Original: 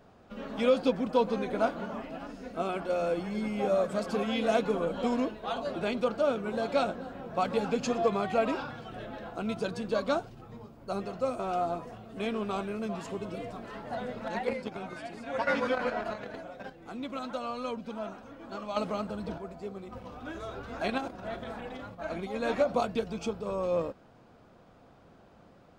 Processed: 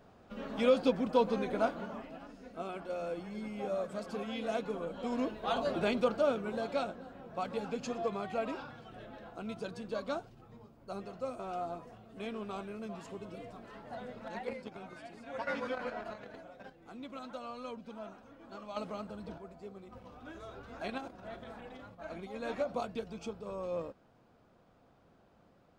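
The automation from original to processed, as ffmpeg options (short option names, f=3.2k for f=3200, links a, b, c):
-af "volume=8dB,afade=t=out:st=1.45:d=0.81:silence=0.473151,afade=t=in:st=5.05:d=0.52:silence=0.316228,afade=t=out:st=5.57:d=1.33:silence=0.334965"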